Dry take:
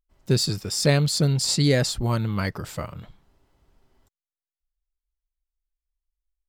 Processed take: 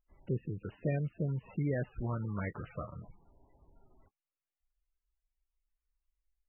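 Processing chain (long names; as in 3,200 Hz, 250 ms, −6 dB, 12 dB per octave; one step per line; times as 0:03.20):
treble cut that deepens with the level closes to 2,700 Hz, closed at −18.5 dBFS
downward compressor 1.5 to 1, threshold −53 dBFS, peak gain reduction 13.5 dB
MP3 8 kbit/s 24,000 Hz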